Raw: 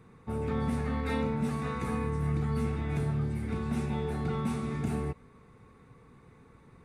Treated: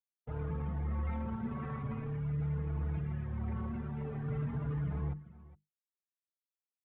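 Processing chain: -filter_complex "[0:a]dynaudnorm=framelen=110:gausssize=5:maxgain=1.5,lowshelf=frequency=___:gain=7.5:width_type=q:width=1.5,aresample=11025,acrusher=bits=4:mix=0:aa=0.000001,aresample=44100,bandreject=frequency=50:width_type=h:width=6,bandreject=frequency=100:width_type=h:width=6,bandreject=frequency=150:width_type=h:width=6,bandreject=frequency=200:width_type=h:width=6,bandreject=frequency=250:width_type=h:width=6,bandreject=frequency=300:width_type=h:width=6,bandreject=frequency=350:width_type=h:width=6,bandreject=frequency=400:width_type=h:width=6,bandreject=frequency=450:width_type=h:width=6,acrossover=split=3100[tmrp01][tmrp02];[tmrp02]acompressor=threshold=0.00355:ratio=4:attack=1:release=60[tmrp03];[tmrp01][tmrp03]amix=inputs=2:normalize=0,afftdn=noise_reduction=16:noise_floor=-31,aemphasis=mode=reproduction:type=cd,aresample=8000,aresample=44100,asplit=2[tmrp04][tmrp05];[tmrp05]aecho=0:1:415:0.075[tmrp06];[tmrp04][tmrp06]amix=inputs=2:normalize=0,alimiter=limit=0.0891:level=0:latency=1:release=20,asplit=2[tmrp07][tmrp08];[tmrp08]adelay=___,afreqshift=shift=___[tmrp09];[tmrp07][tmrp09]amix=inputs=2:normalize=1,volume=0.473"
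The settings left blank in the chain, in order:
200, 4.5, 0.45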